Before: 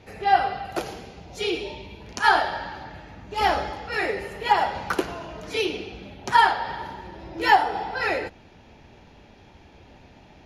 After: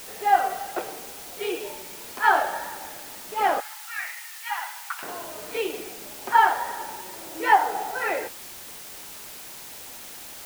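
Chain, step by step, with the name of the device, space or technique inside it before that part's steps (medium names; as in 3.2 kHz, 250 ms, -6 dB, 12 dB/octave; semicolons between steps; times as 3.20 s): wax cylinder (band-pass 350–2100 Hz; wow and flutter; white noise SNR 14 dB); 3.60–5.03 s: Bessel high-pass 1.6 kHz, order 8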